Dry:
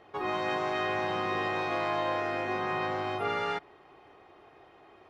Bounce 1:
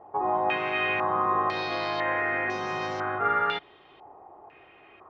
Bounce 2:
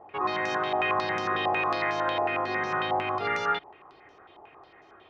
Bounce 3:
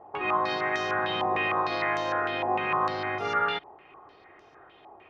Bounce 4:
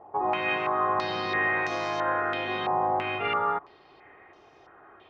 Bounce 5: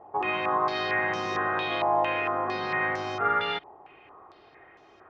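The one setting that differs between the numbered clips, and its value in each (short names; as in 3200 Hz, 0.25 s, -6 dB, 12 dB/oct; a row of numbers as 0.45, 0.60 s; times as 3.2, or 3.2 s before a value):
stepped low-pass, rate: 2, 11, 6.6, 3, 4.4 Hz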